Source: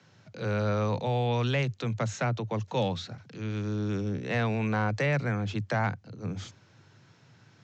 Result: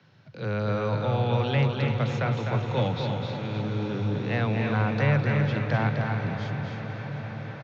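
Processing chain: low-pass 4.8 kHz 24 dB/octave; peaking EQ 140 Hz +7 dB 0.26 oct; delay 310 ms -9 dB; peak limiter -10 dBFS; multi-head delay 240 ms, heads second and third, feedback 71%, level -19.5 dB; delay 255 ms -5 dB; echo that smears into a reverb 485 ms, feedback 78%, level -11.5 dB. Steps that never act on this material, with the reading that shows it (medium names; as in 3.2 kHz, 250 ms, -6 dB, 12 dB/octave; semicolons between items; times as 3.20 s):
peak limiter -10 dBFS: peak at its input -13.0 dBFS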